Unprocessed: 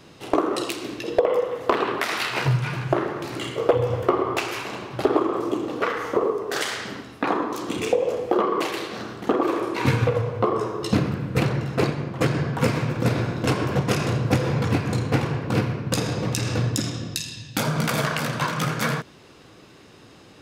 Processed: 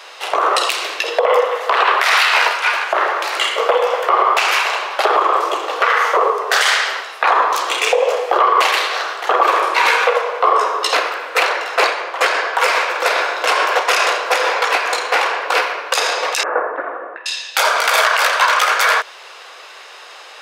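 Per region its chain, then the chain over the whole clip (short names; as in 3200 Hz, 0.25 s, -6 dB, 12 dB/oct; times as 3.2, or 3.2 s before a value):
16.43–17.26 steep low-pass 1600 Hz + low shelf 470 Hz +9.5 dB
whole clip: Bessel high-pass 910 Hz, order 8; high shelf 4800 Hz -8 dB; maximiser +20.5 dB; gain -2 dB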